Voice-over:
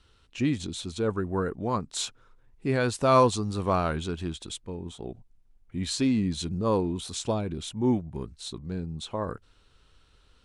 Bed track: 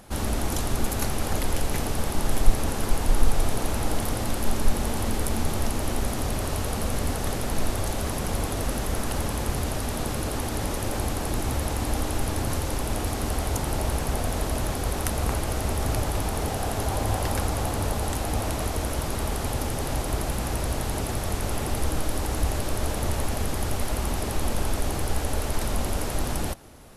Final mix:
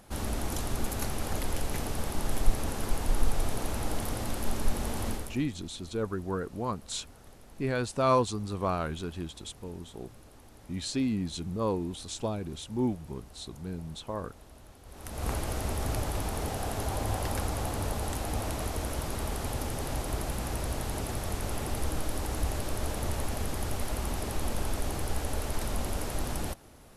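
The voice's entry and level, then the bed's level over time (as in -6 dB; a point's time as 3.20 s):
4.95 s, -4.5 dB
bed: 5.11 s -6 dB
5.50 s -25.5 dB
14.83 s -25.5 dB
15.28 s -5.5 dB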